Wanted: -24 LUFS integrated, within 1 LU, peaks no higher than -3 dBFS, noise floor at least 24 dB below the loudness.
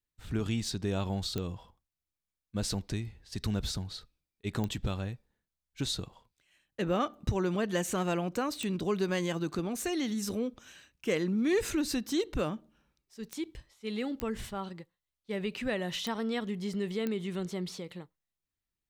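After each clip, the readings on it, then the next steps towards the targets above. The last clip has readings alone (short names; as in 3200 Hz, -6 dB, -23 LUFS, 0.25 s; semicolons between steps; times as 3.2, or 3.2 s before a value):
clicks 7; loudness -34.0 LUFS; peak -17.5 dBFS; loudness target -24.0 LUFS
-> de-click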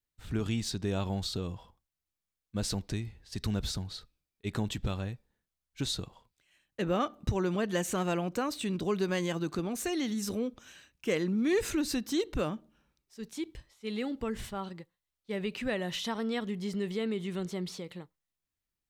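clicks 0; loudness -34.0 LUFS; peak -17.5 dBFS; loudness target -24.0 LUFS
-> gain +10 dB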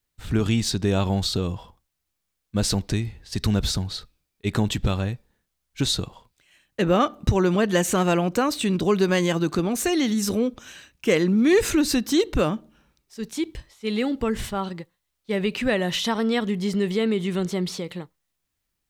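loudness -24.0 LUFS; peak -7.5 dBFS; noise floor -79 dBFS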